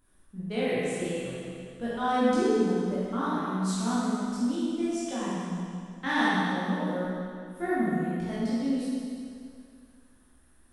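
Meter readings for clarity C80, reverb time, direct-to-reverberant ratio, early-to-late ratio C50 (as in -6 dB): -2.5 dB, 2.3 s, -10.5 dB, -4.5 dB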